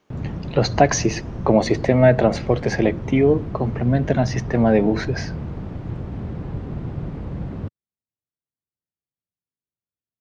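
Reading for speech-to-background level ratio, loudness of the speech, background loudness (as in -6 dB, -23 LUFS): 11.0 dB, -19.5 LUFS, -30.5 LUFS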